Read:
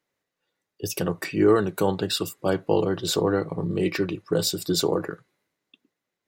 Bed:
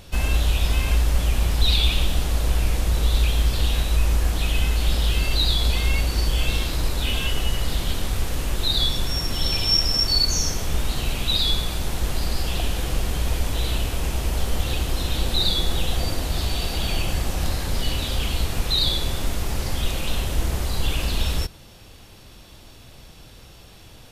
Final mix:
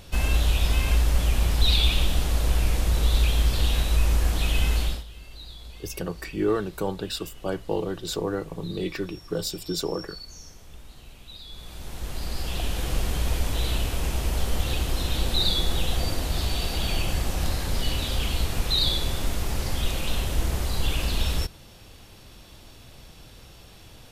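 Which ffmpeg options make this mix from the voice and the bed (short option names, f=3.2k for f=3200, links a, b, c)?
-filter_complex "[0:a]adelay=5000,volume=-5.5dB[a];[1:a]volume=18.5dB,afade=t=out:st=4.77:d=0.27:silence=0.0944061,afade=t=in:st=11.49:d=1.48:silence=0.1[b];[a][b]amix=inputs=2:normalize=0"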